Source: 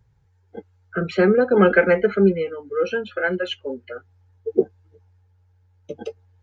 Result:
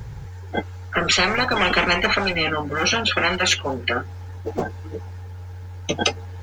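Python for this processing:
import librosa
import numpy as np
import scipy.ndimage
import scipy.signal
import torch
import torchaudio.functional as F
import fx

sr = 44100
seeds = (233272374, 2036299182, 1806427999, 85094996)

y = fx.spectral_comp(x, sr, ratio=10.0)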